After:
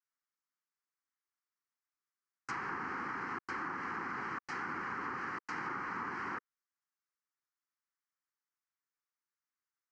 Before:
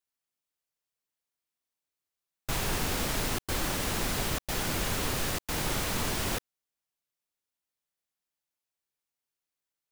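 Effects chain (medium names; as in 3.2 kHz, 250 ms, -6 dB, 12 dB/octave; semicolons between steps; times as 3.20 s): cabinet simulation 390–5900 Hz, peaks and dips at 460 Hz -6 dB, 1.2 kHz +3 dB, 2.6 kHz -7 dB; static phaser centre 1.5 kHz, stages 4; low-pass that closes with the level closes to 1.5 kHz, closed at -34.5 dBFS; trim +1 dB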